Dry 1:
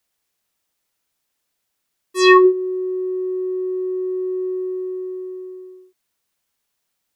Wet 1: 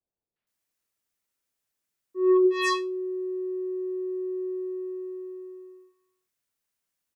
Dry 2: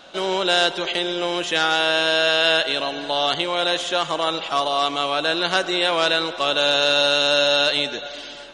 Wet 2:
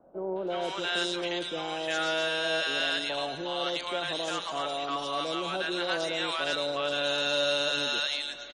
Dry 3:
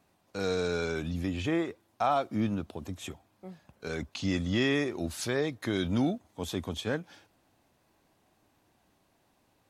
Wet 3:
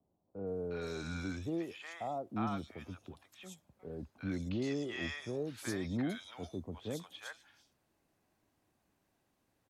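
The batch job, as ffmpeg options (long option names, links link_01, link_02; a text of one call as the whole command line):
ffmpeg -i in.wav -filter_complex "[0:a]acrossover=split=820|3600[link_01][link_02][link_03];[link_02]adelay=360[link_04];[link_03]adelay=470[link_05];[link_01][link_04][link_05]amix=inputs=3:normalize=0,acrossover=split=170|700|2600[link_06][link_07][link_08][link_09];[link_08]asoftclip=type=tanh:threshold=-17.5dB[link_10];[link_06][link_07][link_10][link_09]amix=inputs=4:normalize=0,volume=-7.5dB" out.wav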